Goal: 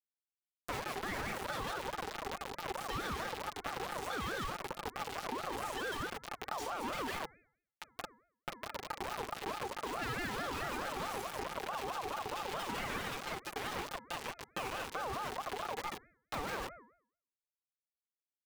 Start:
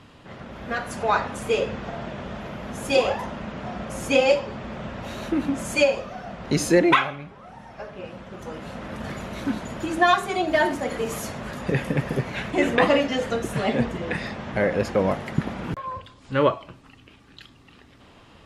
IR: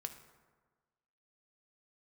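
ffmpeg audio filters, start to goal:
-filter_complex "[0:a]asettb=1/sr,asplit=3[link_01][link_02][link_03];[link_01]atrim=end=12.594[link_04];[link_02]atrim=start=12.59:end=14.94,asetpts=PTS-STARTPTS,afade=type=in:duration=0.004:curve=qsin,afade=type=out:start_time=2.346:duration=0.004:curve=qsin,lowshelf=frequency=660:width_type=q:width=1.5:gain=-12.5[link_05];[link_03]atrim=start=14.936[link_06];[link_04][link_05]acrossfade=duration=0.004:curve1=hsin:curve2=qsin[link_07];[link_07][link_06]acrossfade=duration=0.004:curve1=qsin:curve2=hsin,aecho=1:1:149:0.668,aeval=exprs='val(0)*gte(abs(val(0)),0.0531)':channel_layout=same,aeval=exprs='(tanh(17.8*val(0)+0.45)-tanh(0.45))/17.8':channel_layout=same,highpass=140,aecho=1:1:5.7:0.85,acompressor=threshold=-34dB:ratio=3,equalizer=frequency=180:width=0.89:gain=13,bandreject=frequency=363.4:width_type=h:width=4,bandreject=frequency=726.8:width_type=h:width=4,bandreject=frequency=1090.2:width_type=h:width=4,bandreject=frequency=1453.6:width_type=h:width=4,alimiter=level_in=7.5dB:limit=-24dB:level=0:latency=1:release=69,volume=-7.5dB,acrossover=split=1200|4200[link_08][link_09][link_10];[link_08]acompressor=threshold=-45dB:ratio=4[link_11];[link_09]acompressor=threshold=-51dB:ratio=4[link_12];[link_10]acompressor=threshold=-58dB:ratio=4[link_13];[link_11][link_12][link_13]amix=inputs=3:normalize=0,aeval=exprs='val(0)*sin(2*PI*820*n/s+820*0.3/4.6*sin(2*PI*4.6*n/s))':channel_layout=same,volume=9.5dB"

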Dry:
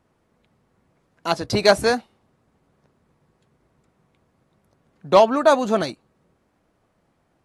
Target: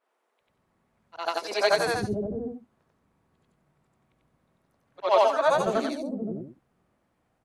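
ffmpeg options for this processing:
ffmpeg -i in.wav -filter_complex "[0:a]afftfilt=real='re':imag='-im':win_size=8192:overlap=0.75,lowshelf=frequency=87:gain=-2.5,acrossover=split=400|5200[link_01][link_02][link_03];[link_03]adelay=70[link_04];[link_01]adelay=520[link_05];[link_05][link_02][link_04]amix=inputs=3:normalize=0" out.wav

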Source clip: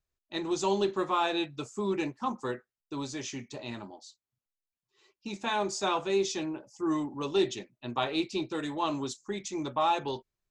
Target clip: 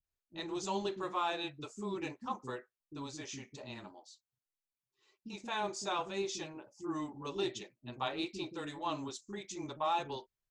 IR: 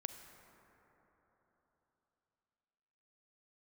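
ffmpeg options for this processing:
-filter_complex "[0:a]acrossover=split=310[link_01][link_02];[link_02]adelay=40[link_03];[link_01][link_03]amix=inputs=2:normalize=0,volume=-6dB"

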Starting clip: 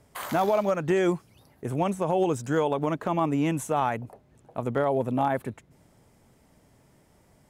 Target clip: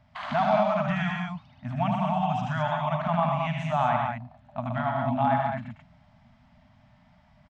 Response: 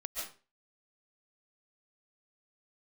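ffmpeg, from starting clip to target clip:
-af "afftfilt=real='re*(1-between(b*sr/4096,260,590))':imag='im*(1-between(b*sr/4096,260,590))':win_size=4096:overlap=0.75,lowpass=frequency=4200:width=0.5412,lowpass=frequency=4200:width=1.3066,aecho=1:1:75.8|122.4|183.7|215.7:0.562|0.562|0.316|0.562"

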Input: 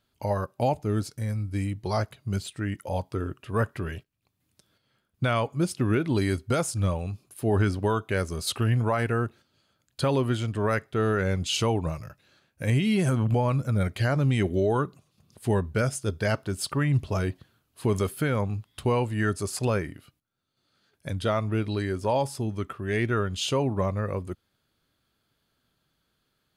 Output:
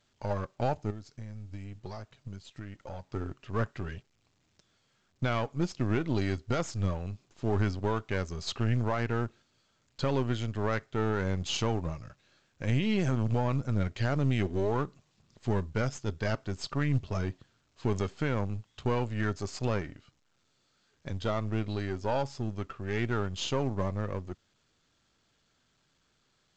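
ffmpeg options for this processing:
ffmpeg -i in.wav -filter_complex "[0:a]aeval=exprs='if(lt(val(0),0),0.447*val(0),val(0))':channel_layout=same,asettb=1/sr,asplit=3[link_01][link_02][link_03];[link_01]atrim=end=0.904[link_04];[link_02]atrim=start=0.9:end=3.09,asetpts=PTS-STARTPTS,afade=type=in:duration=0.004:curve=qsin,afade=type=out:start_time=2.186:duration=0.004:curve=qsin,acompressor=threshold=-35dB:ratio=16[link_05];[link_03]atrim=start=3.086[link_06];[link_04][link_05]acrossfade=duration=0.004:curve1=hsin:curve2=qsin[link_07];[link_07][link_06]acrossfade=duration=0.004:curve1=qsin:curve2=hsin,volume=-2.5dB" -ar 16000 -c:a pcm_alaw out.wav

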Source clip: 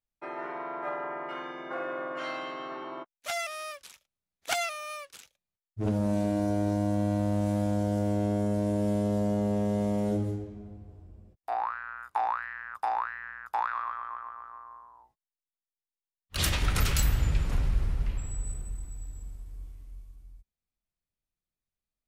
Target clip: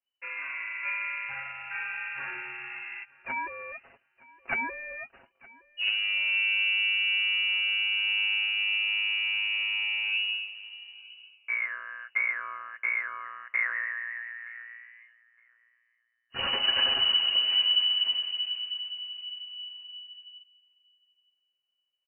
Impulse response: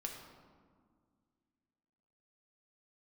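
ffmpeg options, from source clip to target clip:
-filter_complex "[0:a]aecho=1:1:6.9:0.92,aecho=1:1:917|1834:0.0708|0.0127,lowpass=frequency=2600:width_type=q:width=0.5098,lowpass=frequency=2600:width_type=q:width=0.6013,lowpass=frequency=2600:width_type=q:width=0.9,lowpass=frequency=2600:width_type=q:width=2.563,afreqshift=-3000,asettb=1/sr,asplit=3[link_01][link_02][link_03];[link_01]atrim=end=10.954[link_04];[link_02]atrim=start=10.95:end=13.25,asetpts=PTS-STARTPTS,afade=type=in:duration=0.004:curve=qsin,afade=type=out:start_time=2.296:duration=0.004:curve=qsin,asuperstop=centerf=1900:order=4:qfactor=7.8[link_05];[link_03]atrim=start=13.246[link_06];[link_04][link_05]acrossfade=duration=0.004:curve1=hsin:curve2=qsin[link_07];[link_07][link_06]acrossfade=duration=0.004:curve1=qsin:curve2=hsin,volume=-1.5dB"

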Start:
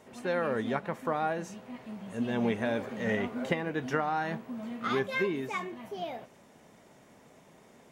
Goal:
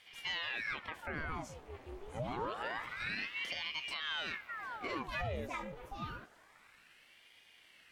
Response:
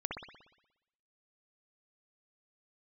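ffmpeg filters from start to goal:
-af "alimiter=level_in=1dB:limit=-24dB:level=0:latency=1:release=44,volume=-1dB,aeval=exprs='val(0)*sin(2*PI*1400*n/s+1400*0.9/0.27*sin(2*PI*0.27*n/s))':channel_layout=same,volume=-2.5dB"

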